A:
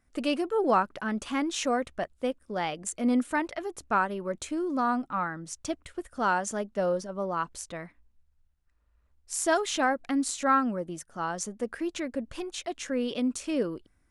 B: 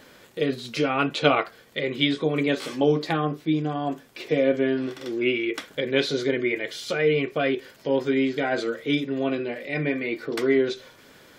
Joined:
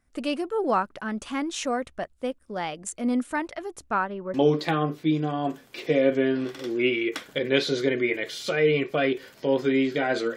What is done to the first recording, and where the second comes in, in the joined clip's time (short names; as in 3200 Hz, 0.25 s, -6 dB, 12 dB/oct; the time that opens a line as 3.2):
A
3.9–4.34 LPF 6000 Hz -> 1700 Hz
4.34 switch to B from 2.76 s